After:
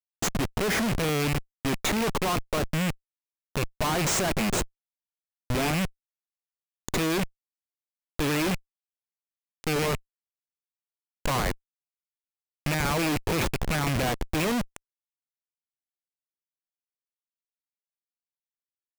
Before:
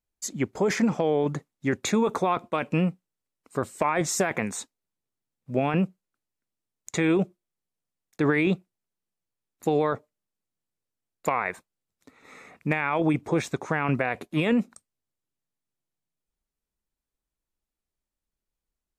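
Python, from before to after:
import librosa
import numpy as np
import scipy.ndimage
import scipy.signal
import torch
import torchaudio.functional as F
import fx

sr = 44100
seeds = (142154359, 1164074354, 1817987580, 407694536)

y = fx.rattle_buzz(x, sr, strikes_db=-30.0, level_db=-16.0)
y = fx.schmitt(y, sr, flips_db=-31.5)
y = y * librosa.db_to_amplitude(3.5)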